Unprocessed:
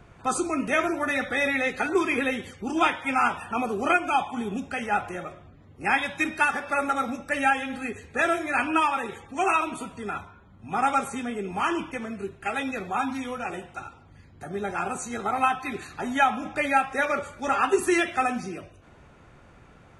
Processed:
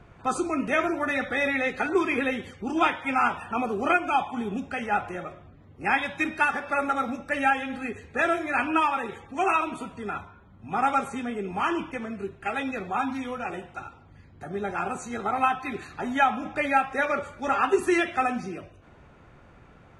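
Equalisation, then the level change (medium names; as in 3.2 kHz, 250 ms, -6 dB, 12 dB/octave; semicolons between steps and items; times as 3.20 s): treble shelf 6 kHz -10.5 dB; 0.0 dB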